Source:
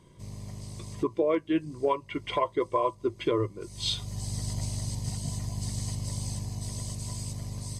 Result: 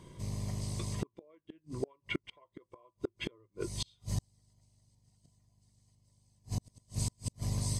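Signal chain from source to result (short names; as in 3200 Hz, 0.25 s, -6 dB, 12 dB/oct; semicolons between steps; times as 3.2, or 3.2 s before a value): flipped gate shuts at -25 dBFS, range -39 dB; gain +3.5 dB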